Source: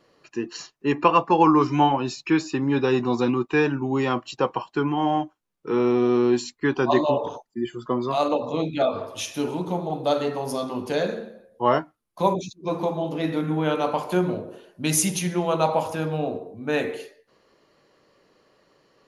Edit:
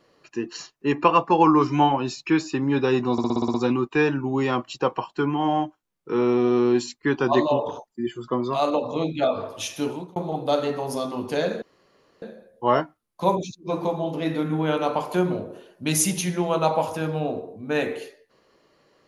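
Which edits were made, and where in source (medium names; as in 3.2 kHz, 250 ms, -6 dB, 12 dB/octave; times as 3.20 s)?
3.12 s: stutter 0.06 s, 8 plays
9.43–9.74 s: fade out
11.20 s: insert room tone 0.60 s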